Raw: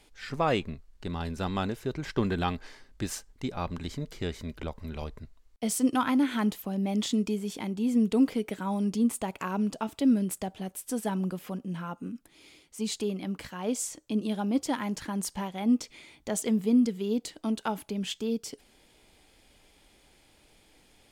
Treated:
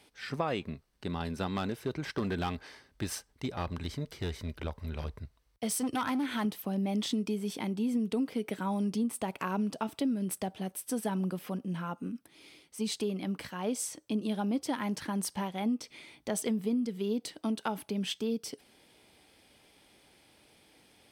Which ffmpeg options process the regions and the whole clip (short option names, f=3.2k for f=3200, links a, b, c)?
-filter_complex "[0:a]asettb=1/sr,asplit=3[a][b][c];[a]atrim=end=1.484[d];[b]atrim=start=1.48:end=6.45,asetpts=PTS-STARTPTS,afade=t=in:d=0.004:c=qsin,afade=t=out:st=4.966:d=0.004:c=qsin,asubboost=boost=6.5:cutoff=83,asoftclip=type=hard:threshold=-25dB,highpass=51[e];[c]atrim=start=6.446[f];[d][e]acrossfade=d=0.004:c1=hsin:c2=qsin[g];[g][f]acrossfade=d=0.004:c1=qsin:c2=hsin,highpass=93,bandreject=f=7k:w=6.3,acompressor=threshold=-27dB:ratio=10"